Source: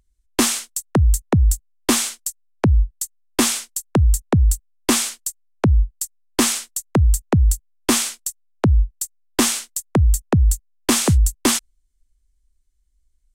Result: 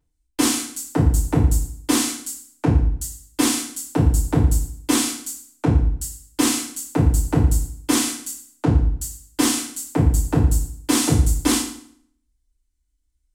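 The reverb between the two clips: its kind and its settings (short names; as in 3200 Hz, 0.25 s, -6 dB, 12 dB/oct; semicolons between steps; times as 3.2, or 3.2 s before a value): FDN reverb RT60 0.6 s, low-frequency decay 1.2×, high-frequency decay 0.9×, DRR -9.5 dB; gain -12 dB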